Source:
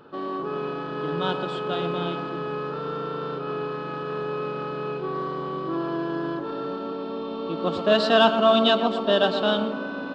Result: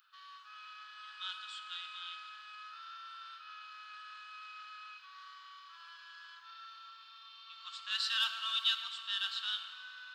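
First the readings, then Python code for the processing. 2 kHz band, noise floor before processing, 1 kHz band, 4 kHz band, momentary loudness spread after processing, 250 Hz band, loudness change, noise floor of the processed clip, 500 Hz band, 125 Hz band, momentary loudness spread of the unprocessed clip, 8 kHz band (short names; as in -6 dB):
-11.5 dB, -32 dBFS, -20.0 dB, -6.5 dB, 20 LU, under -40 dB, -13.0 dB, -55 dBFS, under -40 dB, under -40 dB, 13 LU, n/a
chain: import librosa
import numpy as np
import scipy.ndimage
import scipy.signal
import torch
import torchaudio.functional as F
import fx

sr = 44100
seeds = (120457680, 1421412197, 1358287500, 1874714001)

y = scipy.signal.sosfilt(scipy.signal.butter(6, 1200.0, 'highpass', fs=sr, output='sos'), x)
y = np.diff(y, prepend=0.0)
y = fx.rev_plate(y, sr, seeds[0], rt60_s=3.2, hf_ratio=0.75, predelay_ms=0, drr_db=10.0)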